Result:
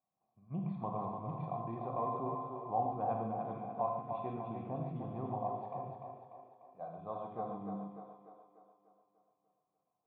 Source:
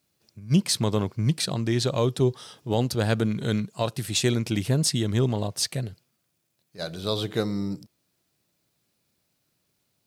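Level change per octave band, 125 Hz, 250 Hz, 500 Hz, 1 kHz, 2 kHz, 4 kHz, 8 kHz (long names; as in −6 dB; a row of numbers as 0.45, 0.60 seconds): −18.5 dB, −16.0 dB, −12.5 dB, +0.5 dB, −27.5 dB, below −40 dB, below −40 dB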